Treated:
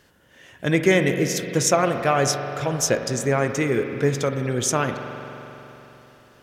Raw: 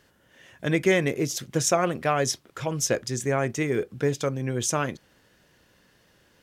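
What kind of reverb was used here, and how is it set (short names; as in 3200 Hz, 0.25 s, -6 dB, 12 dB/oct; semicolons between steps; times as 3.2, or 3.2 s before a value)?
spring tank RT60 3.6 s, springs 43 ms, chirp 20 ms, DRR 6 dB; gain +3.5 dB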